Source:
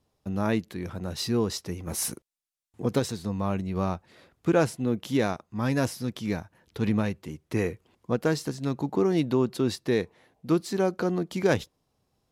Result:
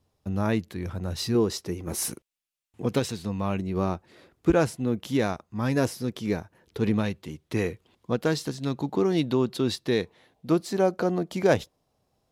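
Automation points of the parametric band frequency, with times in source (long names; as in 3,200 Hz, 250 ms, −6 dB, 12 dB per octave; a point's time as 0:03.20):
parametric band +6 dB 0.68 octaves
87 Hz
from 0:01.35 360 Hz
from 0:02.11 2,700 Hz
from 0:03.58 350 Hz
from 0:04.50 65 Hz
from 0:05.76 410 Hz
from 0:06.94 3,600 Hz
from 0:10.49 640 Hz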